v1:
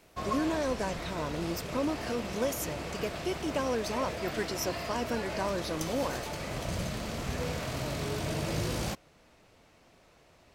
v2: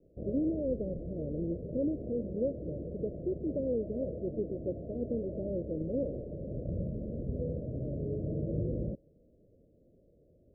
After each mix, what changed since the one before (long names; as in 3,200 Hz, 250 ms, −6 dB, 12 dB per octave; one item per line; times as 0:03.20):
master: add Butterworth low-pass 580 Hz 72 dB per octave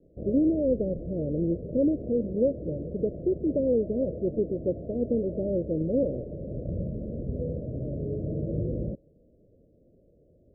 speech +8.0 dB
background +3.5 dB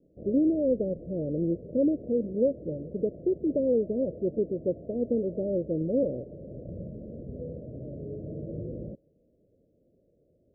background −5.0 dB
master: add low-shelf EQ 77 Hz −9.5 dB